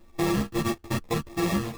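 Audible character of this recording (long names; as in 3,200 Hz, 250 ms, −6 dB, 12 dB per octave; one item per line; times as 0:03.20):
a buzz of ramps at a fixed pitch in blocks of 128 samples
phaser sweep stages 6, 1.6 Hz, lowest notch 510–1,700 Hz
aliases and images of a low sample rate 1,500 Hz, jitter 0%
a shimmering, thickened sound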